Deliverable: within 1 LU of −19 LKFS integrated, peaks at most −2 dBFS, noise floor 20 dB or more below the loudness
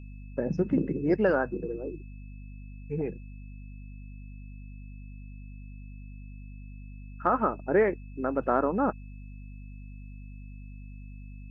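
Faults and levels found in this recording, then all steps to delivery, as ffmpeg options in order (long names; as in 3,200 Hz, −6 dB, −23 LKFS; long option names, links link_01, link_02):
mains hum 50 Hz; hum harmonics up to 250 Hz; level of the hum −41 dBFS; interfering tone 2,600 Hz; level of the tone −60 dBFS; integrated loudness −28.5 LKFS; sample peak −10.5 dBFS; target loudness −19.0 LKFS
→ -af "bandreject=frequency=50:width_type=h:width=6,bandreject=frequency=100:width_type=h:width=6,bandreject=frequency=150:width_type=h:width=6,bandreject=frequency=200:width_type=h:width=6,bandreject=frequency=250:width_type=h:width=6"
-af "bandreject=frequency=2600:width=30"
-af "volume=9.5dB,alimiter=limit=-2dB:level=0:latency=1"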